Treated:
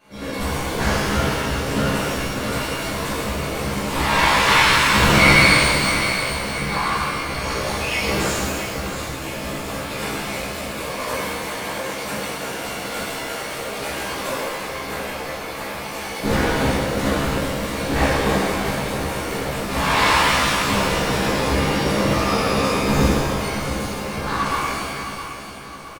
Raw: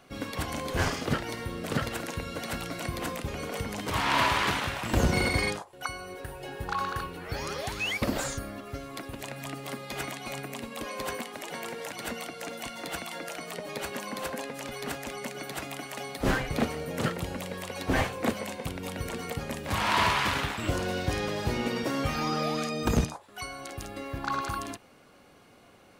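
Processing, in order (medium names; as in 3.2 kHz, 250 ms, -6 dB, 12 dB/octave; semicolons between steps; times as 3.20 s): 4.46–5.51 s: time-frequency box 920–4300 Hz +8 dB; 14.32–15.80 s: graphic EQ 250/4000/8000 Hz -7/-4/-9 dB; whisper effect; doubling 15 ms -2.5 dB; feedback delay 665 ms, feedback 48%, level -10 dB; pitch-shifted reverb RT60 1.7 s, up +12 st, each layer -8 dB, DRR -11 dB; trim -4.5 dB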